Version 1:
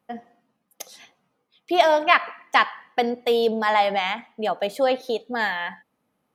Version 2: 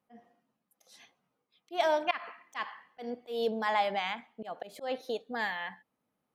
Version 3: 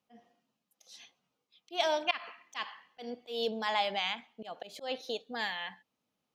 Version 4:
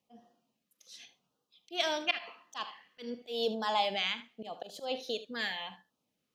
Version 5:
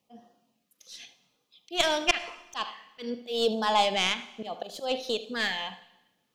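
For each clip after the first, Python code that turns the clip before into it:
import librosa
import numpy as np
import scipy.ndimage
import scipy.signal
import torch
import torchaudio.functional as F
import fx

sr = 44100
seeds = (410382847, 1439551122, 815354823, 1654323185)

y1 = fx.auto_swell(x, sr, attack_ms=159.0)
y1 = y1 * 10.0 ** (-9.0 / 20.0)
y2 = fx.band_shelf(y1, sr, hz=4200.0, db=8.5, octaves=1.7)
y2 = y2 * 10.0 ** (-3.0 / 20.0)
y3 = fx.filter_lfo_notch(y2, sr, shape='sine', hz=0.9, low_hz=730.0, high_hz=2300.0, q=1.4)
y3 = fx.room_early_taps(y3, sr, ms=(42, 76), db=(-17.0, -15.0))
y3 = y3 * 10.0 ** (1.5 / 20.0)
y4 = fx.tracing_dist(y3, sr, depth_ms=0.052)
y4 = fx.rev_plate(y4, sr, seeds[0], rt60_s=0.99, hf_ratio=0.95, predelay_ms=85, drr_db=18.5)
y4 = y4 * 10.0 ** (6.0 / 20.0)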